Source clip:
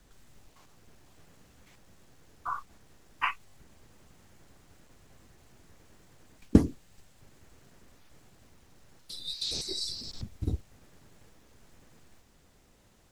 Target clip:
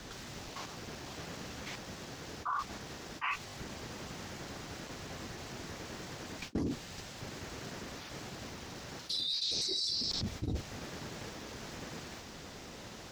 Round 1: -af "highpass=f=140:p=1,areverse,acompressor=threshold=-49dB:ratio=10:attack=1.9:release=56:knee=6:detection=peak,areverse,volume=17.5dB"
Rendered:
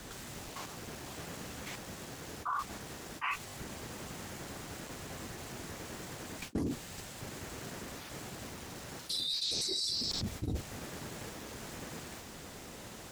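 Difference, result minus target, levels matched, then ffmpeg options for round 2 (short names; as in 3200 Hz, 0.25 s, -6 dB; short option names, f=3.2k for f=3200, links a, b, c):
8000 Hz band +2.5 dB
-af "highpass=f=140:p=1,highshelf=f=7.2k:t=q:w=1.5:g=-8,areverse,acompressor=threshold=-49dB:ratio=10:attack=1.9:release=56:knee=6:detection=peak,areverse,volume=17.5dB"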